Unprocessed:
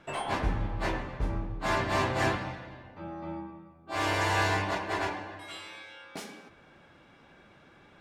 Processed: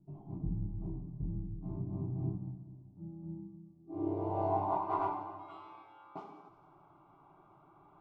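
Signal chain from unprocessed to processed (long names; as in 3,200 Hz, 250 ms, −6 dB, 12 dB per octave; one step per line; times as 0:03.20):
phaser with its sweep stopped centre 340 Hz, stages 8
delay with a high-pass on its return 89 ms, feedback 69%, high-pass 4,200 Hz, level −8 dB
low-pass filter sweep 200 Hz → 1,200 Hz, 0:03.59–0:04.95
level −3.5 dB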